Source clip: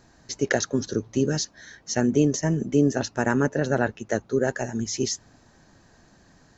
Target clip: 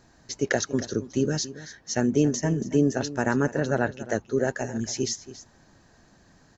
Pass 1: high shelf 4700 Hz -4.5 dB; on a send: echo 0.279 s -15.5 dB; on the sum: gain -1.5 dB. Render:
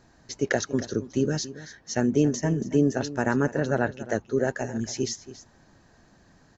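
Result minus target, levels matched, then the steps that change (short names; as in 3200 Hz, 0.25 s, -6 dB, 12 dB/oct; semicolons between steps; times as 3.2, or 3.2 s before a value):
8000 Hz band -2.5 dB
remove: high shelf 4700 Hz -4.5 dB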